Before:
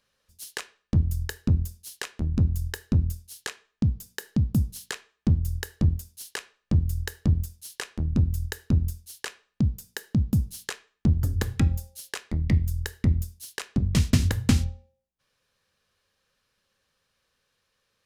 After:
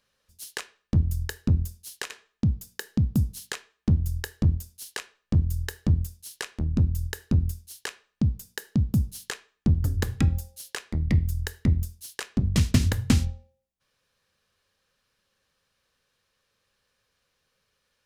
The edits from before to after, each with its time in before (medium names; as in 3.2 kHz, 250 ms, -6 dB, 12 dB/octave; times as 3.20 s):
2.10–3.49 s: delete